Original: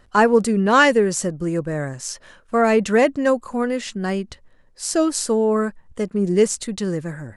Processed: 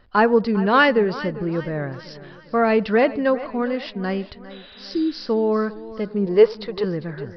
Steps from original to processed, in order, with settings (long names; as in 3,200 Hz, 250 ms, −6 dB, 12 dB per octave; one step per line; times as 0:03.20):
downsampling to 11,025 Hz
0:04.53–0:05.19: healed spectral selection 390–4,000 Hz after
0:06.26–0:06.84: graphic EQ with 10 bands 250 Hz −12 dB, 500 Hz +9 dB, 1,000 Hz +9 dB
on a send: delay with a band-pass on its return 86 ms, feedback 35%, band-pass 760 Hz, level −20.5 dB
on the sum: feedback echo with a swinging delay time 401 ms, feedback 47%, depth 61 cents, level −16.5 dB
level −1.5 dB